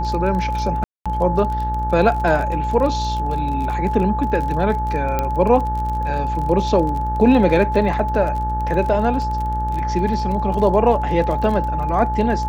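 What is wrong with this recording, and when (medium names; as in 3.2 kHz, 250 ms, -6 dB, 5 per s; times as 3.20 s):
buzz 60 Hz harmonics 31 -24 dBFS
crackle 29 per s -25 dBFS
whine 860 Hz -22 dBFS
0.84–1.06 s: dropout 216 ms
5.19 s: pop -7 dBFS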